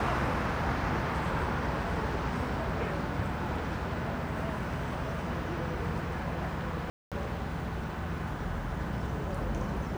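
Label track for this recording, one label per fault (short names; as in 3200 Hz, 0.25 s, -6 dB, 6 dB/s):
6.900000	7.120000	gap 0.217 s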